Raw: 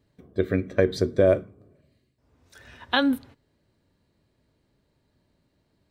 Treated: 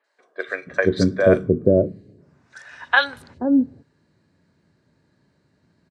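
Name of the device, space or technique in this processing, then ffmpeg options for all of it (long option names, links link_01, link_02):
car door speaker: -filter_complex "[0:a]highpass=98,equalizer=frequency=170:width_type=q:width=4:gain=5,equalizer=frequency=1600:width_type=q:width=4:gain=6,equalizer=frequency=3300:width_type=q:width=4:gain=-4,lowpass=frequency=8100:width=0.5412,lowpass=frequency=8100:width=1.3066,acrossover=split=580|3000[link_01][link_02][link_03];[link_03]adelay=40[link_04];[link_01]adelay=480[link_05];[link_05][link_02][link_04]amix=inputs=3:normalize=0,volume=6.5dB"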